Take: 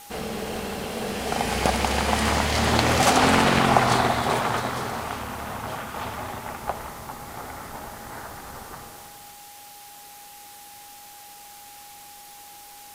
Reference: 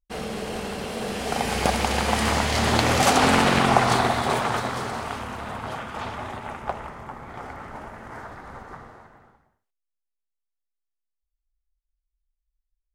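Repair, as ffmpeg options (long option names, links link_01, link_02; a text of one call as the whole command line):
ffmpeg -i in.wav -af "adeclick=threshold=4,bandreject=frequency=820:width=30,afwtdn=0.0056" out.wav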